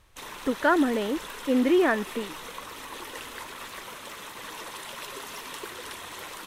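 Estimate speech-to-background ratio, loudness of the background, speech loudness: 13.0 dB, -38.5 LUFS, -25.5 LUFS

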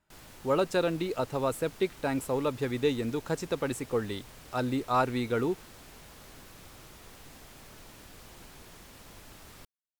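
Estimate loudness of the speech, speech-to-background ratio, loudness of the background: -31.0 LUFS, 19.0 dB, -50.0 LUFS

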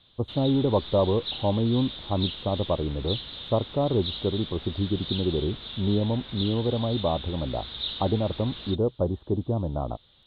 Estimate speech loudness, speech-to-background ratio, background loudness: -27.5 LUFS, 8.5 dB, -36.0 LUFS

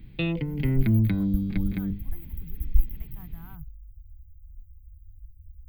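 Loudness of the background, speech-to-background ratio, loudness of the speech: -26.5 LUFS, -10.0 dB, -36.5 LUFS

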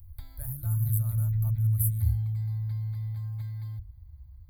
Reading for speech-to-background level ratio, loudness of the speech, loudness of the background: -3.5 dB, -34.0 LUFS, -30.5 LUFS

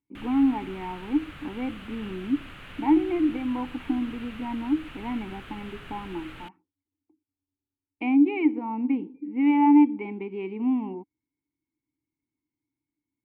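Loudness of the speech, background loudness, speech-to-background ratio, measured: -26.0 LUFS, -44.0 LUFS, 18.0 dB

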